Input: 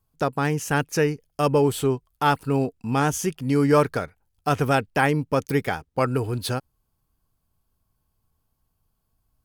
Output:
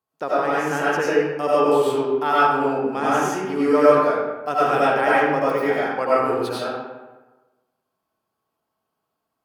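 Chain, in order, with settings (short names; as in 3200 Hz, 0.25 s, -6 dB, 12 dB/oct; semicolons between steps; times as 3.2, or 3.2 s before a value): HPF 340 Hz 12 dB/oct; high shelf 4300 Hz -11.5 dB; digital reverb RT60 1.2 s, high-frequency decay 0.6×, pre-delay 55 ms, DRR -8.5 dB; gain -3 dB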